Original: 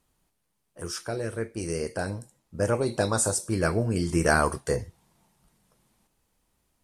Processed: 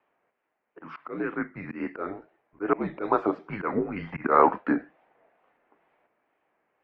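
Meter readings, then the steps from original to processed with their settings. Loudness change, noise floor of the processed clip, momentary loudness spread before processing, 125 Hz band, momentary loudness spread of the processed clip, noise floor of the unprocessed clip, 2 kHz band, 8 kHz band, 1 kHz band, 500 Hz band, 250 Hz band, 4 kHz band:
−0.5 dB, −80 dBFS, 12 LU, −12.5 dB, 16 LU, −76 dBFS, −4.5 dB, below −40 dB, +5.5 dB, −1.0 dB, +0.5 dB, below −15 dB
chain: single-sideband voice off tune −190 Hz 520–2,500 Hz
tape wow and flutter 100 cents
volume swells 127 ms
level +7.5 dB

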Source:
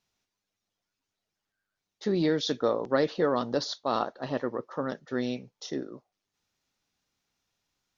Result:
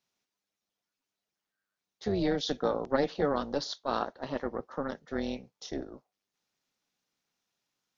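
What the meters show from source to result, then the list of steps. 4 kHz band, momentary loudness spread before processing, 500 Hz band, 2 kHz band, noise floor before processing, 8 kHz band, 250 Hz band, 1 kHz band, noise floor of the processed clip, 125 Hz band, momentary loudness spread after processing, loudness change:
−3.0 dB, 10 LU, −3.0 dB, −3.0 dB, below −85 dBFS, can't be measured, −3.0 dB, −2.0 dB, below −85 dBFS, −3.0 dB, 10 LU, −3.0 dB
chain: high-pass filter 140 Hz 24 dB per octave
amplitude modulation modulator 290 Hz, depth 50%

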